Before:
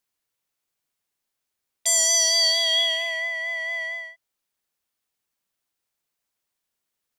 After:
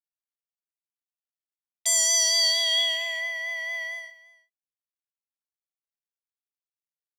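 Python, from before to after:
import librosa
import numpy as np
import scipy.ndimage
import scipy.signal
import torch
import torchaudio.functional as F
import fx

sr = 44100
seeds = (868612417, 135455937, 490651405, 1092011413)

p1 = fx.law_mismatch(x, sr, coded='A')
p2 = scipy.signal.sosfilt(scipy.signal.butter(2, 700.0, 'highpass', fs=sr, output='sos'), p1)
p3 = p2 + fx.echo_single(p2, sr, ms=339, db=-20.0, dry=0)
y = p3 * librosa.db_to_amplitude(-1.5)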